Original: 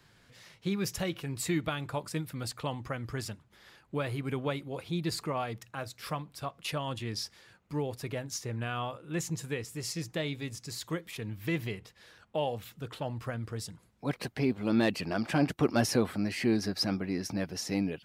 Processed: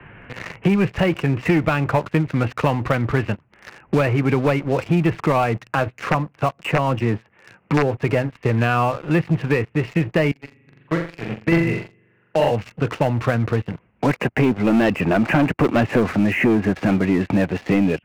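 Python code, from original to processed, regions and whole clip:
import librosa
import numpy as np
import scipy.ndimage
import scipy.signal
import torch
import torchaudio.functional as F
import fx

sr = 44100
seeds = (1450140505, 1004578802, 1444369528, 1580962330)

y = fx.chain(x, sr, fx.highpass(hz=87.0, slope=24),
    fx.dynamic_eq(hz=2800.0, q=0.97, threshold_db=-52.0, ratio=4.0, max_db=-6),
    fx.overflow_wrap(gain_db=23.0), at=(5.99, 7.97))
y = fx.chain(y, sr, fx.highpass(hz=94.0, slope=12),
    fx.room_flutter(wall_m=7.2, rt60_s=1.1),
    fx.upward_expand(threshold_db=-37.0, expansion=2.5), at=(10.31, 12.51))
y = scipy.signal.sosfilt(scipy.signal.cheby1(6, 1.0, 2800.0, 'lowpass', fs=sr, output='sos'), y)
y = fx.leveller(y, sr, passes=3)
y = fx.band_squash(y, sr, depth_pct=70)
y = F.gain(torch.from_numpy(y), 5.5).numpy()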